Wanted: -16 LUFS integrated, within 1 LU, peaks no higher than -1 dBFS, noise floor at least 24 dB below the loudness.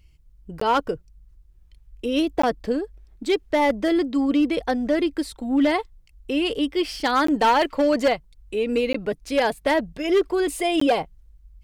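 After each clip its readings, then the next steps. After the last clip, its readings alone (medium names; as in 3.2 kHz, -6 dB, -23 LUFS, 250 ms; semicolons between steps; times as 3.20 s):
clipped samples 0.9%; clipping level -13.5 dBFS; dropouts 5; longest dropout 14 ms; loudness -23.0 LUFS; peak level -13.5 dBFS; loudness target -16.0 LUFS
-> clip repair -13.5 dBFS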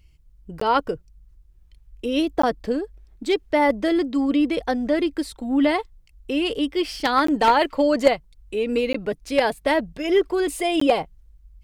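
clipped samples 0.0%; dropouts 5; longest dropout 14 ms
-> interpolate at 0.60/2.42/7.27/8.93/10.80 s, 14 ms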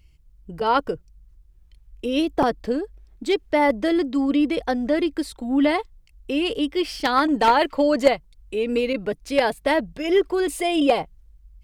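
dropouts 0; loudness -22.0 LUFS; peak level -4.5 dBFS; loudness target -16.0 LUFS
-> trim +6 dB; peak limiter -1 dBFS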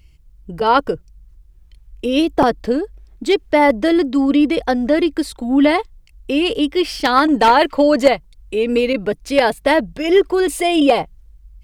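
loudness -16.5 LUFS; peak level -1.0 dBFS; noise floor -48 dBFS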